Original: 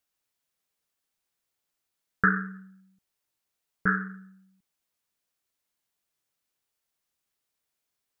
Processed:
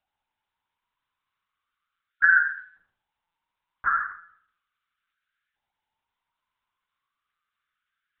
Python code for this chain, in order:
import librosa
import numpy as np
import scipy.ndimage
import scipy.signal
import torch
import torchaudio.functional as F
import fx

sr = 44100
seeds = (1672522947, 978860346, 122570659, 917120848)

p1 = fx.spec_box(x, sr, start_s=2.11, length_s=0.63, low_hz=610.0, high_hz=1400.0, gain_db=-19)
p2 = fx.over_compress(p1, sr, threshold_db=-27.0, ratio=-0.5)
p3 = p1 + (p2 * librosa.db_to_amplitude(-2.0))
p4 = fx.filter_lfo_highpass(p3, sr, shape='saw_up', hz=0.36, low_hz=760.0, high_hz=1600.0, q=5.3)
p5 = fx.quant_dither(p4, sr, seeds[0], bits=10, dither='none', at=(2.3, 2.7))
p6 = p5 + fx.echo_thinned(p5, sr, ms=78, feedback_pct=29, hz=1100.0, wet_db=-5.5, dry=0)
p7 = fx.lpc_monotone(p6, sr, seeds[1], pitch_hz=170.0, order=10)
y = p7 * librosa.db_to_amplitude(-6.0)